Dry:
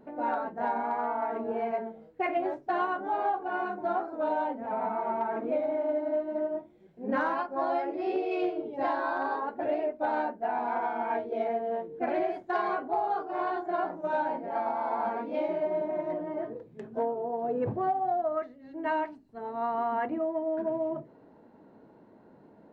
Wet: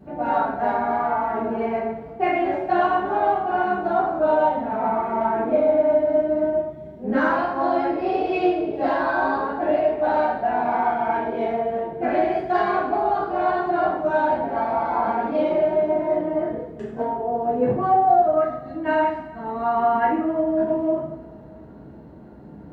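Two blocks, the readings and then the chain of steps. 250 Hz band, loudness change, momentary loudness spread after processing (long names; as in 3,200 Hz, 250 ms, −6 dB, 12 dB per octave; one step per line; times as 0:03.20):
+10.0 dB, +9.0 dB, 7 LU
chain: noise in a band 50–280 Hz −55 dBFS
coupled-rooms reverb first 0.64 s, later 2.5 s, DRR −8 dB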